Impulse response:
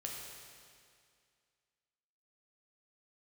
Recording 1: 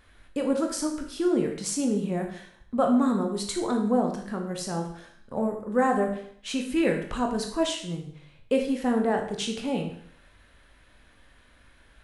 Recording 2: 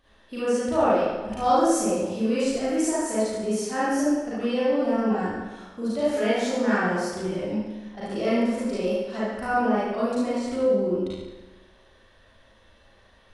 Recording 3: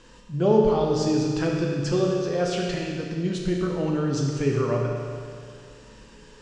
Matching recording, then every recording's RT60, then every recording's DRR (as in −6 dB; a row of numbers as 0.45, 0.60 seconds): 3; 0.60, 1.2, 2.2 seconds; 2.5, −11.0, −1.5 decibels